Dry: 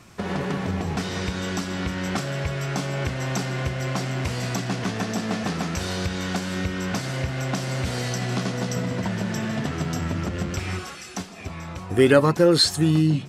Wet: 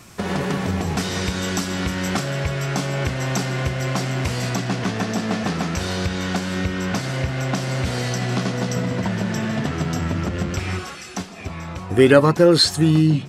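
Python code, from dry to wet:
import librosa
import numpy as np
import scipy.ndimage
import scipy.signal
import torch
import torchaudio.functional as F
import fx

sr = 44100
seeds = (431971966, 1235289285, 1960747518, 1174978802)

y = fx.high_shelf(x, sr, hz=6500.0, db=fx.steps((0.0, 8.5), (2.15, 2.0), (4.49, -3.5)))
y = y * librosa.db_to_amplitude(3.5)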